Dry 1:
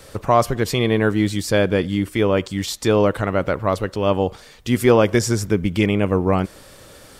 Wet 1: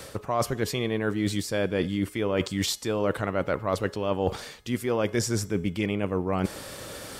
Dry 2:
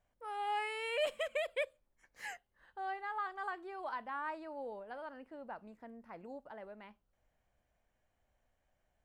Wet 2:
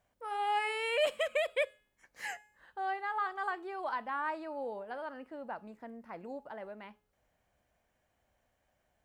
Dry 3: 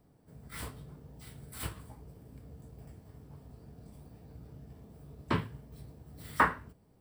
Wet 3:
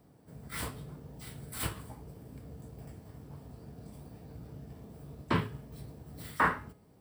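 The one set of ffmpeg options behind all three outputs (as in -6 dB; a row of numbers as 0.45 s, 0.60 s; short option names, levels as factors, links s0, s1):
-af "areverse,acompressor=threshold=0.0447:ratio=12,areverse,highpass=f=82:p=1,bandreject=f=421.3:t=h:w=4,bandreject=f=842.6:t=h:w=4,bandreject=f=1263.9:t=h:w=4,bandreject=f=1685.2:t=h:w=4,bandreject=f=2106.5:t=h:w=4,bandreject=f=2527.8:t=h:w=4,bandreject=f=2949.1:t=h:w=4,bandreject=f=3370.4:t=h:w=4,bandreject=f=3791.7:t=h:w=4,bandreject=f=4213:t=h:w=4,bandreject=f=4634.3:t=h:w=4,bandreject=f=5055.6:t=h:w=4,bandreject=f=5476.9:t=h:w=4,bandreject=f=5898.2:t=h:w=4,bandreject=f=6319.5:t=h:w=4,bandreject=f=6740.8:t=h:w=4,bandreject=f=7162.1:t=h:w=4,bandreject=f=7583.4:t=h:w=4,bandreject=f=8004.7:t=h:w=4,bandreject=f=8426:t=h:w=4,bandreject=f=8847.3:t=h:w=4,bandreject=f=9268.6:t=h:w=4,bandreject=f=9689.9:t=h:w=4,bandreject=f=10111.2:t=h:w=4,bandreject=f=10532.5:t=h:w=4,bandreject=f=10953.8:t=h:w=4,bandreject=f=11375.1:t=h:w=4,bandreject=f=11796.4:t=h:w=4,bandreject=f=12217.7:t=h:w=4,bandreject=f=12639:t=h:w=4,bandreject=f=13060.3:t=h:w=4,bandreject=f=13481.6:t=h:w=4,volume=1.78"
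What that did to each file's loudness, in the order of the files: -8.5 LU, +5.0 LU, -2.5 LU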